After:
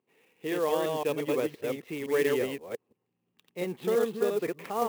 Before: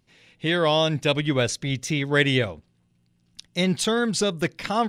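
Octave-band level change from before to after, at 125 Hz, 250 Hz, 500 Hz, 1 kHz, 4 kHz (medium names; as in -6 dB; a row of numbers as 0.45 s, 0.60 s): -17.5 dB, -9.0 dB, -2.5 dB, -6.5 dB, -17.5 dB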